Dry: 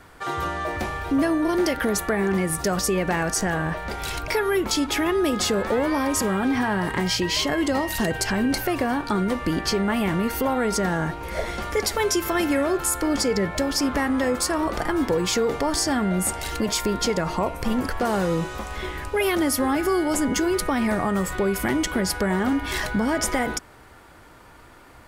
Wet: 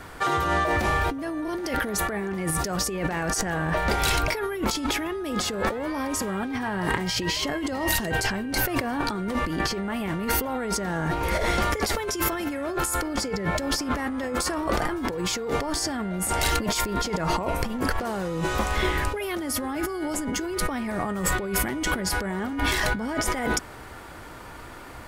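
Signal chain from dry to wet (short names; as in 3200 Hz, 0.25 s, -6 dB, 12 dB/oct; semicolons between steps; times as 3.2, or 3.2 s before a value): negative-ratio compressor -29 dBFS, ratio -1; gain +2 dB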